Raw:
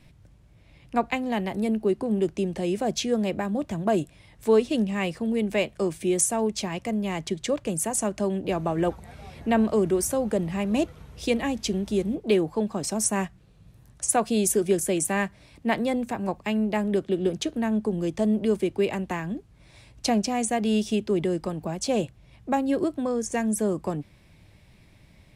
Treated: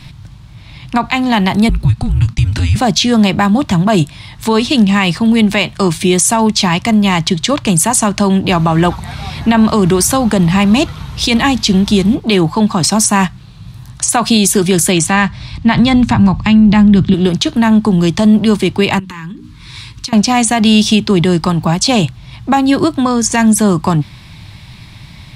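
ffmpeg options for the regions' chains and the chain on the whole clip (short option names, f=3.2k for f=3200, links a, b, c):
-filter_complex "[0:a]asettb=1/sr,asplit=3[a][b][c];[a]atrim=end=1.694[d];[b]atrim=start=1.69:end=2.76,asetpts=PTS-STARTPTS,afade=t=in:d=0.004:c=qsin,afade=t=out:st=1.066:d=0.004:c=qsin,agate=range=-33dB:threshold=-41dB:ratio=3:release=100:detection=peak,acompressor=threshold=-28dB:ratio=5:attack=3.2:release=140:knee=1:detection=peak,afreqshift=-270[e];[c]atrim=start=2.756[f];[d][e]acrossfade=d=0.004:c1=hsin:c2=qsin[g];[g][f]acrossfade=d=0.004:c1=qsin:c2=hsin,asettb=1/sr,asplit=3[h][i][j];[h]atrim=end=14.924[k];[i]atrim=start=14.92:end=17.14,asetpts=PTS-STARTPTS,afade=t=in:d=0.004:c=qsin,afade=t=out:st=2.216:d=0.004:c=qsin,asubboost=boost=12:cutoff=180,lowpass=6.7k[l];[j]atrim=start=17.136[m];[k][l]acrossfade=d=0.004:c1=hsin:c2=qsin[n];[n][m]acrossfade=d=0.004:c1=qsin:c2=hsin,asettb=1/sr,asplit=3[o][p][q];[o]atrim=end=18.994[r];[p]atrim=start=18.99:end=20.13,asetpts=PTS-STARTPTS,afade=t=in:d=0.004:c=qsin,afade=t=out:st=1.136:d=0.004:c=qsin,bandreject=f=60:t=h:w=6,bandreject=f=120:t=h:w=6,bandreject=f=180:t=h:w=6,bandreject=f=240:t=h:w=6,bandreject=f=300:t=h:w=6,acompressor=threshold=-42dB:ratio=8:attack=3.2:release=140:knee=1:detection=peak,asuperstop=centerf=680:order=4:qfactor=1.5[s];[q]atrim=start=20.126[t];[r][s]acrossfade=d=0.004:c1=hsin:c2=qsin[u];[u][t]acrossfade=d=0.004:c1=qsin:c2=hsin,equalizer=f=125:t=o:w=1:g=7,equalizer=f=500:t=o:w=1:g=-11,equalizer=f=1k:t=o:w=1:g=8,equalizer=f=4k:t=o:w=1:g=10,alimiter=level_in=17.5dB:limit=-1dB:release=50:level=0:latency=1,volume=-1dB"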